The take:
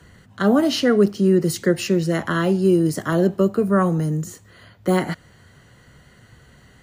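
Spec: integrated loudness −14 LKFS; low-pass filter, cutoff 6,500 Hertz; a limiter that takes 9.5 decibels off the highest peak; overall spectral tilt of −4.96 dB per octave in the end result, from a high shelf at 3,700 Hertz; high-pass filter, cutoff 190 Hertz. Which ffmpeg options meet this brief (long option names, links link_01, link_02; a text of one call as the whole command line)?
ffmpeg -i in.wav -af "highpass=190,lowpass=6500,highshelf=frequency=3700:gain=7,volume=11.5dB,alimiter=limit=-4.5dB:level=0:latency=1" out.wav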